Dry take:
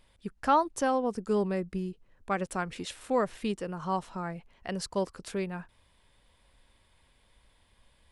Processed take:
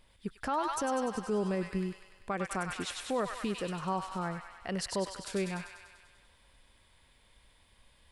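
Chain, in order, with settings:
delay with a high-pass on its return 98 ms, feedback 66%, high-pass 1,500 Hz, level −3 dB
brickwall limiter −23.5 dBFS, peak gain reduction 10 dB

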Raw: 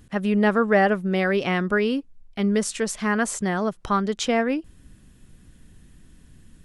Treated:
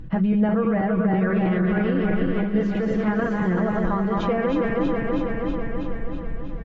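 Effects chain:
feedback delay that plays each chunk backwards 162 ms, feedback 79%, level −4.5 dB
low-shelf EQ 150 Hz +10 dB
notch filter 730 Hz, Q 19
comb filter 6.1 ms, depth 66%
brickwall limiter −15 dBFS, peak gain reduction 12.5 dB
downward compressor 2 to 1, threshold −28 dBFS, peak gain reduction 6 dB
head-to-tape spacing loss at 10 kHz 45 dB
mains-hum notches 50/100/150/200 Hz
on a send: single-tap delay 449 ms −19 dB
on the sum: level +8.5 dB
AAC 24 kbit/s 32,000 Hz

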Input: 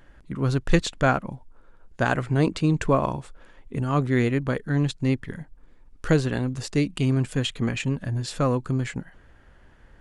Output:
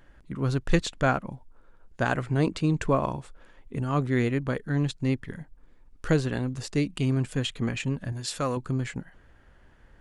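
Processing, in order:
0:08.12–0:08.57: spectral tilt +2 dB per octave
level −3 dB

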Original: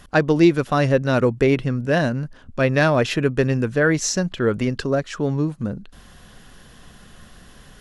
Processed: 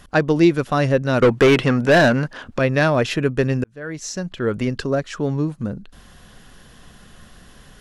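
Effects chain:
0:01.22–0:02.59: mid-hump overdrive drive 23 dB, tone 3,600 Hz, clips at −5 dBFS
0:03.64–0:04.66: fade in

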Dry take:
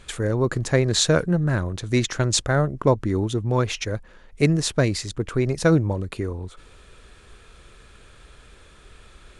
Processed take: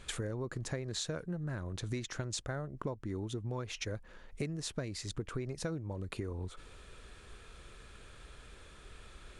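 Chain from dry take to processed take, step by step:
downward compressor 12 to 1, threshold −30 dBFS, peak gain reduction 18 dB
level −4.5 dB

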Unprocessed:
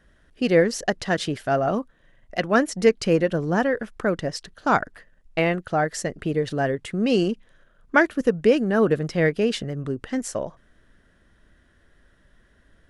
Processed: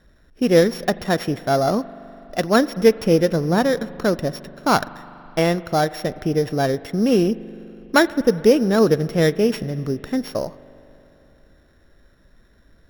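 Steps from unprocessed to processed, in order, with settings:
samples sorted by size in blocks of 8 samples
high-shelf EQ 3,100 Hz −9.5 dB
spring reverb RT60 3.4 s, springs 41 ms, chirp 75 ms, DRR 17 dB
level +4 dB

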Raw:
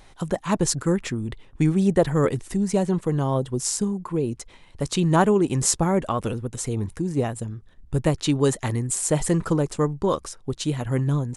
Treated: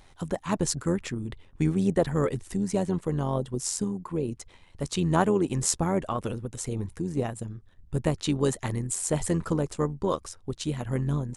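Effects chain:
amplitude modulation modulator 87 Hz, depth 35%
level −2.5 dB

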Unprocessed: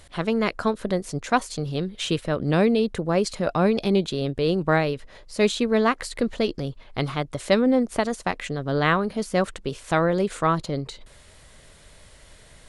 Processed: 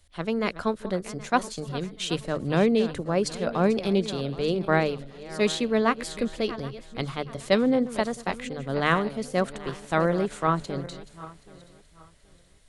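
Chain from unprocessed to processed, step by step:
feedback delay that plays each chunk backwards 388 ms, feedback 61%, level −12.5 dB
mains-hum notches 50/100/150 Hz
multiband upward and downward expander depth 40%
level −3 dB

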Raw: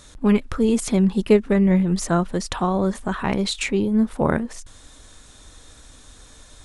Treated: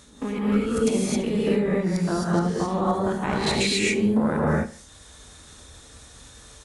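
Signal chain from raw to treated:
peak hold with a rise ahead of every peak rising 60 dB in 0.35 s
output level in coarse steps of 24 dB
high-pass filter 44 Hz
on a send: repeating echo 74 ms, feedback 35%, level −17 dB
on the sum: reverb whose tail is shaped and stops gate 290 ms rising, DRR −5.5 dB
level −3 dB

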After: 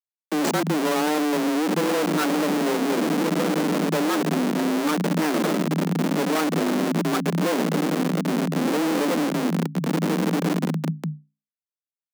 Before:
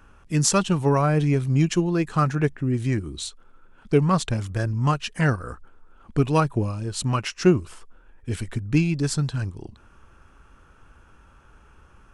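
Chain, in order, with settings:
running median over 15 samples
low-shelf EQ 180 Hz −4 dB
on a send: feedback delay with all-pass diffusion 1,417 ms, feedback 43%, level −9.5 dB
on the sum: comparator with hysteresis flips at −30.5 dBFS
mains-hum notches 60/120 Hz
frequency shifter +150 Hz
level +4 dB

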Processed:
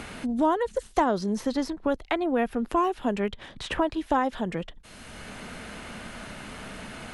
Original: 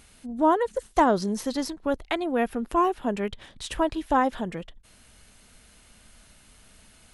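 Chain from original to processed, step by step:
high-shelf EQ 9,800 Hz −11.5 dB
multiband upward and downward compressor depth 70%

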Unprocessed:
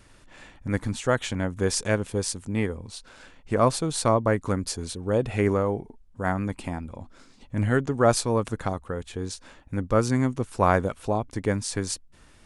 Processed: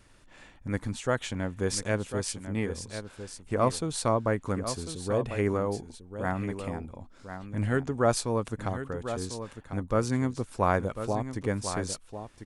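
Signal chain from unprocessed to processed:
single-tap delay 1,047 ms −10 dB
level −4.5 dB

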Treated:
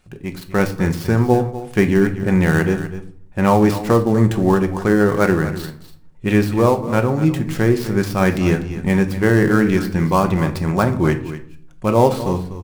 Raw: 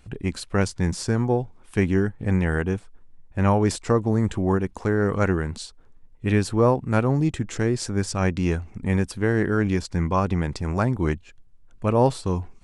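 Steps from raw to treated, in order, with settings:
gap after every zero crossing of 0.065 ms
low-shelf EQ 110 Hz −7.5 dB
automatic gain control gain up to 11.5 dB
single-tap delay 246 ms −13 dB
rectangular room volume 580 cubic metres, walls furnished, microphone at 0.98 metres
level −1.5 dB

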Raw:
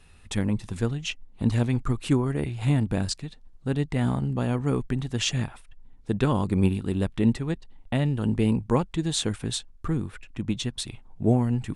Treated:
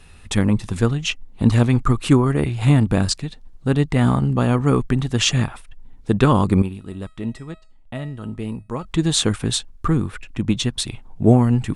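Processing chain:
dynamic equaliser 1,200 Hz, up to +6 dB, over −53 dBFS, Q 4.3
0:06.62–0:08.85: tuned comb filter 640 Hz, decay 0.4 s, mix 80%
level +8 dB

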